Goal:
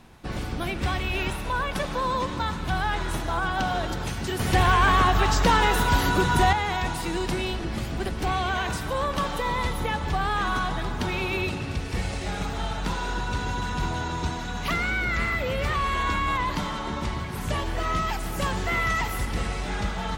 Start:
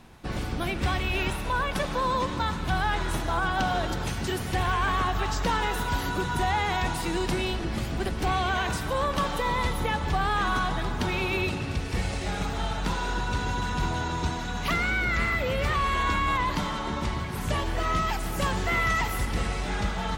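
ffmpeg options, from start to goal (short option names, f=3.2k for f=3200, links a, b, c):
-filter_complex "[0:a]asettb=1/sr,asplit=3[a][b][c];[a]atrim=end=4.394[d];[b]atrim=start=4.39:end=6.53,asetpts=PTS-STARTPTS,afade=t=in:d=0.004:c=qsin,afade=t=out:st=2.136:d=0.004:c=qsin,acontrast=69[e];[c]atrim=start=6.526[f];[d][e]acrossfade=d=0.004:c1=hsin:c2=qsin[g];[g][f]acrossfade=d=0.004:c1=qsin:c2=hsin"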